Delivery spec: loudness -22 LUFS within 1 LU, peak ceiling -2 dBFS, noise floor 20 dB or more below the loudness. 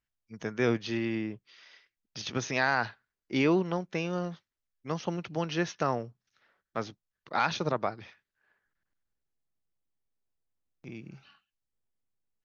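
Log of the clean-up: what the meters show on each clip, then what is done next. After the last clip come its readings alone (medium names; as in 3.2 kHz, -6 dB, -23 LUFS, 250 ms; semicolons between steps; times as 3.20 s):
loudness -31.5 LUFS; peak level -12.0 dBFS; loudness target -22.0 LUFS
-> trim +9.5 dB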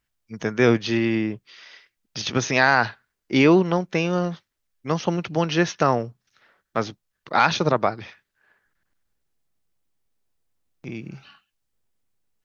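loudness -22.0 LUFS; peak level -2.5 dBFS; noise floor -79 dBFS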